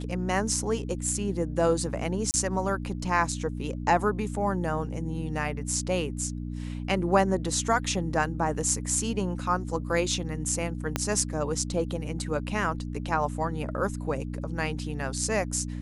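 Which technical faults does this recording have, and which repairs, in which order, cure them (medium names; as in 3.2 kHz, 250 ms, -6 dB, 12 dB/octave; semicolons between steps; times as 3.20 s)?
hum 60 Hz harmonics 5 -34 dBFS
2.31–2.34 s: dropout 29 ms
10.96 s: pop -10 dBFS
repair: de-click; de-hum 60 Hz, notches 5; interpolate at 2.31 s, 29 ms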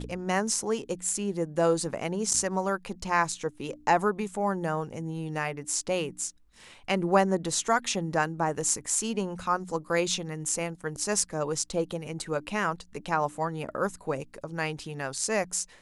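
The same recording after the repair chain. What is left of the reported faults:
10.96 s: pop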